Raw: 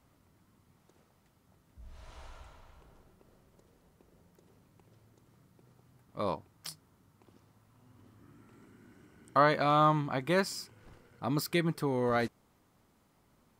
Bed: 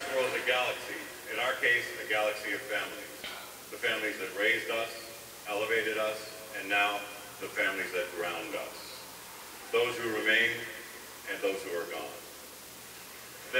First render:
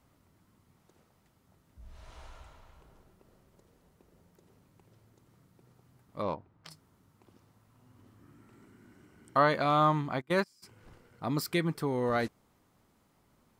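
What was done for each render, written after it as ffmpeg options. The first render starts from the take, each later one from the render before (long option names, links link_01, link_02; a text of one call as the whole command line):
ffmpeg -i in.wav -filter_complex "[0:a]asplit=3[link_01][link_02][link_03];[link_01]afade=type=out:start_time=6.21:duration=0.02[link_04];[link_02]adynamicsmooth=sensitivity=2.5:basefreq=2400,afade=type=in:start_time=6.21:duration=0.02,afade=type=out:start_time=6.7:duration=0.02[link_05];[link_03]afade=type=in:start_time=6.7:duration=0.02[link_06];[link_04][link_05][link_06]amix=inputs=3:normalize=0,asplit=3[link_07][link_08][link_09];[link_07]afade=type=out:start_time=10.2:duration=0.02[link_10];[link_08]agate=range=-25dB:threshold=-30dB:ratio=16:release=100:detection=peak,afade=type=in:start_time=10.2:duration=0.02,afade=type=out:start_time=10.62:duration=0.02[link_11];[link_09]afade=type=in:start_time=10.62:duration=0.02[link_12];[link_10][link_11][link_12]amix=inputs=3:normalize=0" out.wav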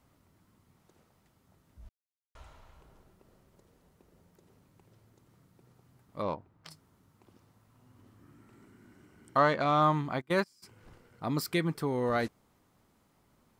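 ffmpeg -i in.wav -filter_complex "[0:a]asettb=1/sr,asplit=3[link_01][link_02][link_03];[link_01]atrim=end=9.374[link_04];[link_02]atrim=start=9.37:end=9.82,asetpts=PTS-STARTPTS,afade=type=in:duration=0.004:curve=qsin,afade=type=out:start_time=0.446:duration=0.004:curve=qsin,adynamicsmooth=sensitivity=3.5:basefreq=4900[link_05];[link_03]atrim=start=9.816[link_06];[link_04][link_05]acrossfade=duration=0.004:curve1=hsin:curve2=qsin[link_07];[link_07][link_06]acrossfade=duration=0.004:curve1=qsin:curve2=hsin,asplit=3[link_08][link_09][link_10];[link_08]atrim=end=1.89,asetpts=PTS-STARTPTS,afade=type=out:start_time=1.886:duration=0.004:curve=hsin[link_11];[link_09]atrim=start=1.89:end=2.35,asetpts=PTS-STARTPTS,volume=0[link_12];[link_10]atrim=start=2.35,asetpts=PTS-STARTPTS,afade=type=in:duration=0.004:curve=hsin[link_13];[link_11][link_12][link_13]concat=n=3:v=0:a=1" out.wav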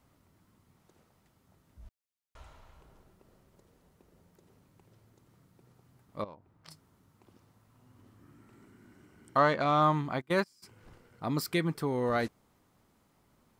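ffmpeg -i in.wav -filter_complex "[0:a]asettb=1/sr,asplit=3[link_01][link_02][link_03];[link_01]atrim=end=6.244[link_04];[link_02]atrim=start=6.24:end=6.68,asetpts=PTS-STARTPTS,afade=type=in:duration=0.004:curve=qsin,afade=type=out:start_time=0.436:duration=0.004:curve=qsin,acompressor=threshold=-57dB:ratio=2:attack=3.2:release=140:knee=1:detection=peak[link_05];[link_03]atrim=start=6.676[link_06];[link_04][link_05]acrossfade=duration=0.004:curve1=hsin:curve2=qsin[link_07];[link_07][link_06]acrossfade=duration=0.004:curve1=qsin:curve2=hsin" out.wav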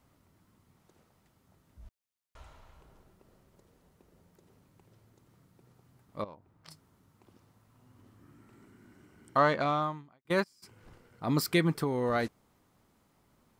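ffmpeg -i in.wav -filter_complex "[0:a]asplit=4[link_01][link_02][link_03][link_04];[link_01]atrim=end=10.25,asetpts=PTS-STARTPTS,afade=type=out:start_time=9.63:duration=0.62:curve=qua[link_05];[link_02]atrim=start=10.25:end=11.282,asetpts=PTS-STARTPTS,afade=type=in:duration=0.004:curve=hsin[link_06];[link_03]atrim=start=11.278:end=11.842,asetpts=PTS-STARTPTS,volume=3.5dB[link_07];[link_04]atrim=start=11.838[link_08];[link_05][link_06]concat=n=2:v=0:a=1[link_09];[link_09][link_07]acrossfade=duration=0.004:curve1=hsin:curve2=hsin[link_10];[link_10][link_08]acrossfade=duration=0.004:curve1=hsin:curve2=hsin" out.wav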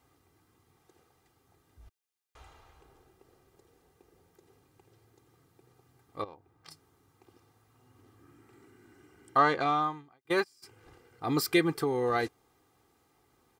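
ffmpeg -i in.wav -af "highpass=frequency=110:poles=1,aecho=1:1:2.5:0.65" out.wav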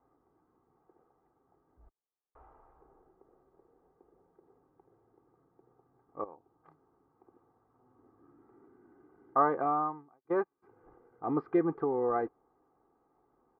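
ffmpeg -i in.wav -af "lowpass=frequency=1200:width=0.5412,lowpass=frequency=1200:width=1.3066,equalizer=frequency=91:width=1.1:gain=-14.5" out.wav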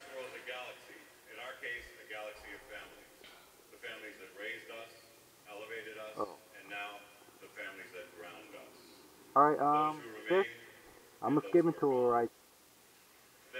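ffmpeg -i in.wav -i bed.wav -filter_complex "[1:a]volume=-15.5dB[link_01];[0:a][link_01]amix=inputs=2:normalize=0" out.wav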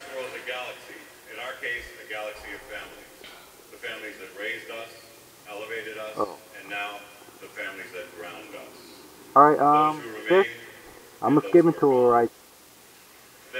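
ffmpeg -i in.wav -af "volume=11dB" out.wav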